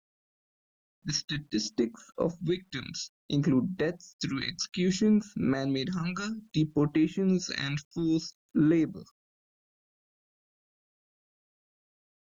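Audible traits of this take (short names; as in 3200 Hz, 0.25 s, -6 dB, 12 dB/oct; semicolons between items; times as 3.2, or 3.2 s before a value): phasing stages 2, 0.61 Hz, lowest notch 390–4800 Hz; a quantiser's noise floor 12-bit, dither none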